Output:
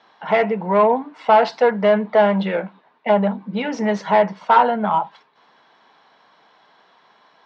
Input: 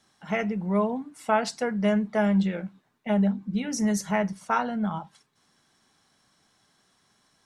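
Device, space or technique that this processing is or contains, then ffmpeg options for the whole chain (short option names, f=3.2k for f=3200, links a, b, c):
overdrive pedal into a guitar cabinet: -filter_complex "[0:a]asplit=2[a][b];[b]highpass=f=720:p=1,volume=19dB,asoftclip=type=tanh:threshold=-10dB[c];[a][c]amix=inputs=2:normalize=0,lowpass=f=3.3k:p=1,volume=-6dB,highpass=100,equalizer=f=120:t=q:w=4:g=-4,equalizer=f=470:t=q:w=4:g=7,equalizer=f=660:t=q:w=4:g=5,equalizer=f=940:t=q:w=4:g=9,lowpass=f=4.1k:w=0.5412,lowpass=f=4.1k:w=1.3066"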